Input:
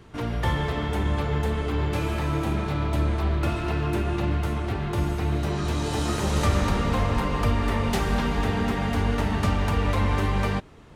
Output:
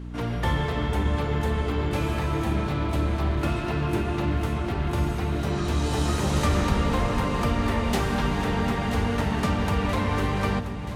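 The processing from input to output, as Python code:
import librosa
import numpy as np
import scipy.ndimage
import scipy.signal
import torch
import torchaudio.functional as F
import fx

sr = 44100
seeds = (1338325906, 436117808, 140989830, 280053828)

y = fx.hum_notches(x, sr, base_hz=50, count=2)
y = fx.echo_alternate(y, sr, ms=490, hz=850.0, feedback_pct=82, wet_db=-11.5)
y = fx.dmg_buzz(y, sr, base_hz=60.0, harmonics=5, level_db=-36.0, tilt_db=-4, odd_only=False)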